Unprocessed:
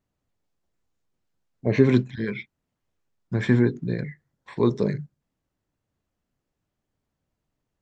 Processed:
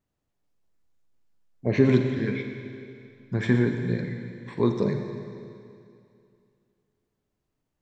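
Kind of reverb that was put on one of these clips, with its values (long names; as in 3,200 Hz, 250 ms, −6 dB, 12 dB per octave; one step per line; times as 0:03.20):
four-comb reverb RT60 2.5 s, DRR 4.5 dB
level −2 dB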